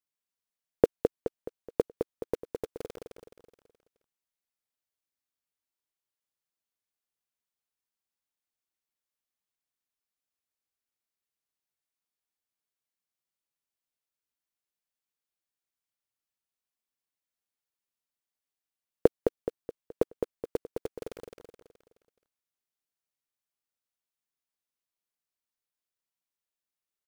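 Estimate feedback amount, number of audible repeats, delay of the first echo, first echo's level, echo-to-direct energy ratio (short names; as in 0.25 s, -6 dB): 45%, 5, 0.212 s, -5.5 dB, -4.5 dB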